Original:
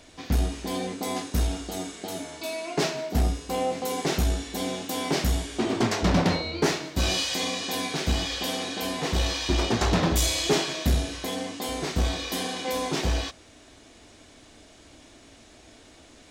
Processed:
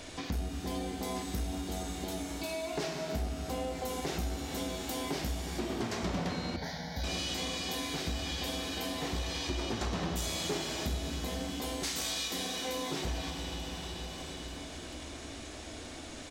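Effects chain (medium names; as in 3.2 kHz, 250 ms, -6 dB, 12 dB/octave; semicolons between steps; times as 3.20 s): 11.83–12.28 s: tilt EQ +4.5 dB/octave; feedback delay 443 ms, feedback 57%, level -18.5 dB; reverberation RT60 3.6 s, pre-delay 12 ms, DRR 3.5 dB; compression 3:1, threshold -44 dBFS, peak gain reduction 19.5 dB; 6.56–7.04 s: static phaser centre 1.8 kHz, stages 8; trim +5.5 dB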